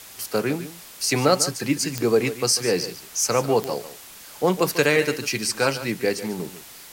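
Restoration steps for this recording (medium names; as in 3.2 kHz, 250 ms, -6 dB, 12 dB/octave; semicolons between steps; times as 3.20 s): de-click; noise reduction 24 dB, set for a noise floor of -43 dBFS; inverse comb 146 ms -13.5 dB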